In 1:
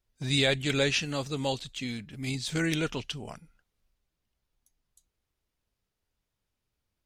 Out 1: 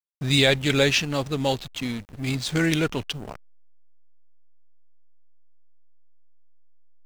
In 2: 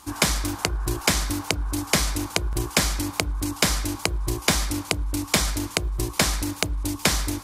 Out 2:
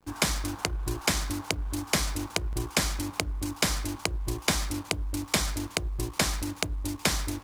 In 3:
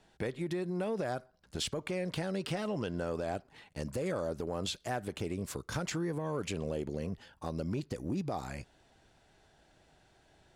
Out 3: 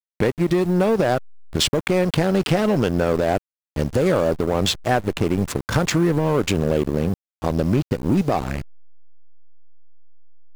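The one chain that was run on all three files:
slack as between gear wheels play −36 dBFS
bit-depth reduction 10 bits, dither none
normalise the peak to −6 dBFS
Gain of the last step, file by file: +6.5, −5.0, +17.0 decibels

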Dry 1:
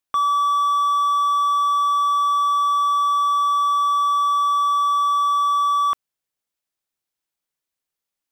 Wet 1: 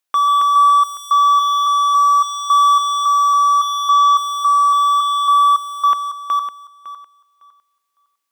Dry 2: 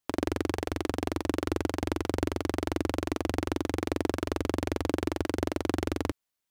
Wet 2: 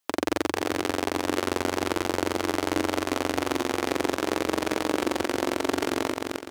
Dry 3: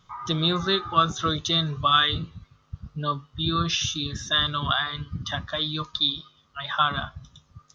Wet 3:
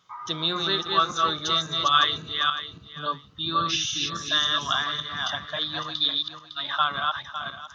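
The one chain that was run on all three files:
feedback delay that plays each chunk backwards 278 ms, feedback 42%, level −3 dB
high-pass filter 490 Hz 6 dB per octave
normalise the peak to −6 dBFS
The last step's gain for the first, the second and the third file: +5.5, +6.5, −1.0 decibels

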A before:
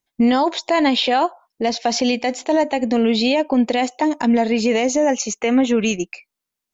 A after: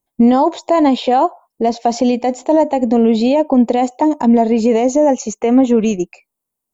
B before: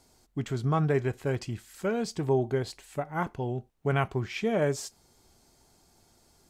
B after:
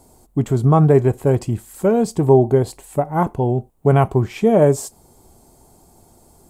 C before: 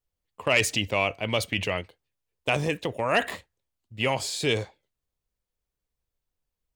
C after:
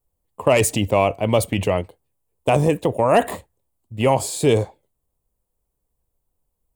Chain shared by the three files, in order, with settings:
flat-topped bell 2,900 Hz −12 dB 2.5 octaves
normalise the peak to −2 dBFS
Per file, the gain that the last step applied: +5.0, +13.5, +10.0 decibels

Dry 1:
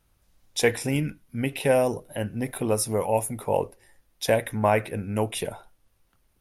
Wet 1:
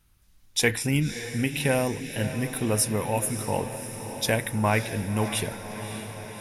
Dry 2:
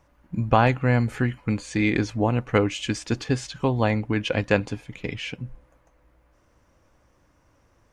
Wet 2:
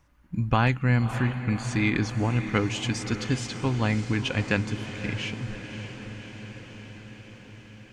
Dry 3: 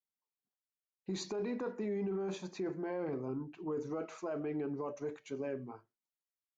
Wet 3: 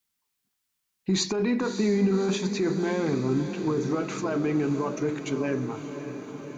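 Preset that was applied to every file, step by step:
parametric band 580 Hz −9.5 dB 1.5 octaves
on a send: feedback delay with all-pass diffusion 590 ms, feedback 69%, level −10.5 dB
on the sum: loudness normalisation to −27 LKFS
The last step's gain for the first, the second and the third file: +3.5, 0.0, +16.5 decibels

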